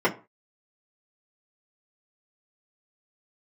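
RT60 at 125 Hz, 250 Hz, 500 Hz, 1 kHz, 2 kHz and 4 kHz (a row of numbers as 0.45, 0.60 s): 0.35, 0.30, 0.35, 0.35, 0.25, 0.20 s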